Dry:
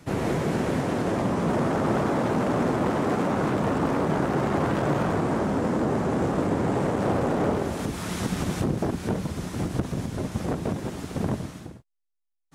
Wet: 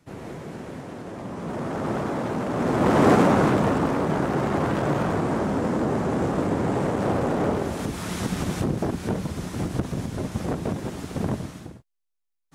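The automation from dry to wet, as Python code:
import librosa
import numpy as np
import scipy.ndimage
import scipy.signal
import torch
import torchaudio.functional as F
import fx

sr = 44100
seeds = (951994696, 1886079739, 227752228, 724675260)

y = fx.gain(x, sr, db=fx.line((1.12, -11.0), (1.87, -3.0), (2.5, -3.0), (3.07, 9.0), (3.94, 0.5)))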